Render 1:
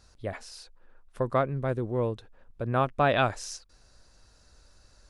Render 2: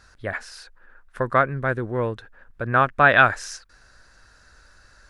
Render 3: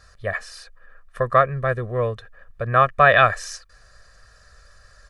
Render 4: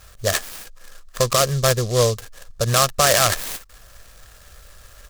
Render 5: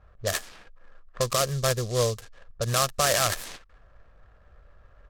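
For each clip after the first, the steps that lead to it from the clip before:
parametric band 1,600 Hz +14.5 dB 0.87 octaves; level +2.5 dB
comb filter 1.7 ms, depth 86%; level −1 dB
brickwall limiter −12 dBFS, peak gain reduction 10 dB; short delay modulated by noise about 5,200 Hz, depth 0.11 ms; level +5.5 dB
low-pass that shuts in the quiet parts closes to 1,100 Hz, open at −17.5 dBFS; level −7 dB

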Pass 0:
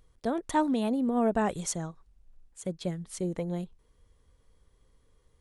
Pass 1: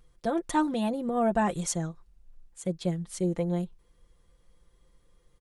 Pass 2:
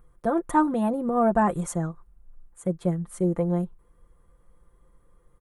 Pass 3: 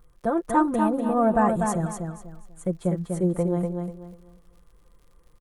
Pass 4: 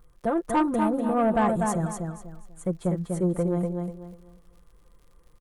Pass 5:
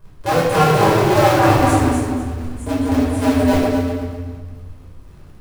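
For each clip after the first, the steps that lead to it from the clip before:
comb filter 5.8 ms
drawn EQ curve 780 Hz 0 dB, 1,200 Hz +4 dB, 2,800 Hz −12 dB, 5,000 Hz −18 dB, 9,700 Hz −3 dB; level +4 dB
surface crackle 58 per second −49 dBFS; repeating echo 245 ms, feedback 27%, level −5 dB
soft clipping −15 dBFS, distortion −18 dB
sub-harmonics by changed cycles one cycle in 2, inverted; rectangular room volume 690 cubic metres, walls mixed, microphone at 5.1 metres; level −1.5 dB

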